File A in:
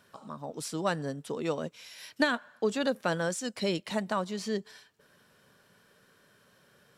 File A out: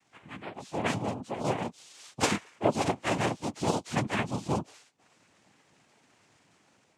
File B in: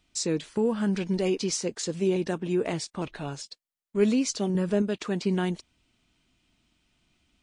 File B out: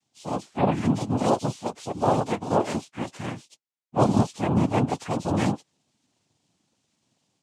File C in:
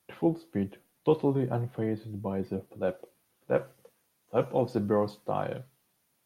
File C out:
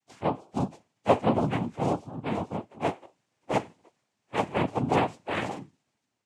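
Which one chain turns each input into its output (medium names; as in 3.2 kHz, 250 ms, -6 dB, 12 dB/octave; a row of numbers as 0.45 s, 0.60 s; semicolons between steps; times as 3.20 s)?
frequency axis rescaled in octaves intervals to 124%; noise-vocoded speech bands 4; level rider gain up to 4.5 dB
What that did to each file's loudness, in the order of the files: +1.0 LU, +2.0 LU, +1.5 LU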